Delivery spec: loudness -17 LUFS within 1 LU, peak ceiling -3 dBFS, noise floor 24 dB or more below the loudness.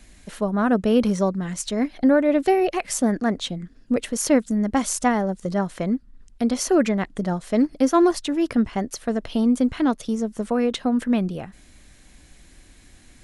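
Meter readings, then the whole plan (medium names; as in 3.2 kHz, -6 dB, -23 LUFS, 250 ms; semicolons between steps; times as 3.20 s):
loudness -22.5 LUFS; peak level -6.5 dBFS; loudness target -17.0 LUFS
-> trim +5.5 dB; peak limiter -3 dBFS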